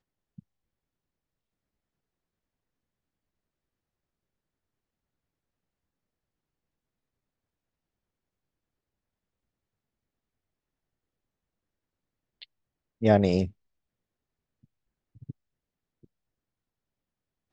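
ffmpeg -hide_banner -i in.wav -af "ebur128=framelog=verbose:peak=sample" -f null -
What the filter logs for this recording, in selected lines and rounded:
Integrated loudness:
  I:         -24.8 LUFS
  Threshold: -40.0 LUFS
Loudness range:
  LRA:         7.3 LU
  Threshold: -53.1 LUFS
  LRA low:   -37.9 LUFS
  LRA high:  -30.5 LUFS
Sample peak:
  Peak:       -6.1 dBFS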